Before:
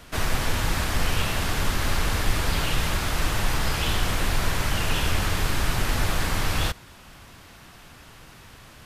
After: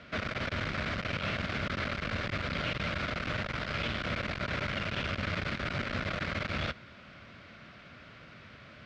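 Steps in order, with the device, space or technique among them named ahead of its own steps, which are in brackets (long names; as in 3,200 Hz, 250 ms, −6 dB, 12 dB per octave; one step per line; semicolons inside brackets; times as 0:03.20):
guitar amplifier (tube saturation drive 25 dB, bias 0.45; bass and treble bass +4 dB, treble +2 dB; loudspeaker in its box 91–4,400 Hz, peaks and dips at 220 Hz +5 dB, 590 Hz +9 dB, 860 Hz −8 dB, 1,400 Hz +7 dB, 2,200 Hz +7 dB)
level −4.5 dB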